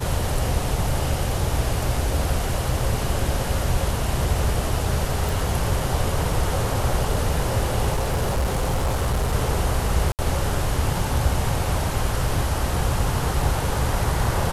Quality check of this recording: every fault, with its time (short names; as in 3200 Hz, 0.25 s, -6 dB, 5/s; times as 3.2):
5.29 pop
7.94–9.34 clipped -18 dBFS
10.12–10.19 gap 68 ms